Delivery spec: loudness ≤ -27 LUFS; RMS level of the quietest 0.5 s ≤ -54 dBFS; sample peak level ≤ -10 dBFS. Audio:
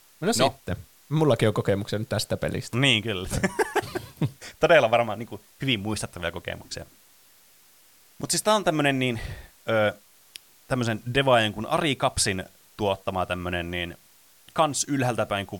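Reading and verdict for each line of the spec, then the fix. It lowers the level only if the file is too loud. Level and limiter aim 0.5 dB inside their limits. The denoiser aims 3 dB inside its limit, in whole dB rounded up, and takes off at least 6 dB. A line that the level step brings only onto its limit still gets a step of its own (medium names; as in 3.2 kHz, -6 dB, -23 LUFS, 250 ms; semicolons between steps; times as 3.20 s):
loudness -25.0 LUFS: fail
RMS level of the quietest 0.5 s -56 dBFS: pass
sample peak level -6.0 dBFS: fail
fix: trim -2.5 dB; peak limiter -10.5 dBFS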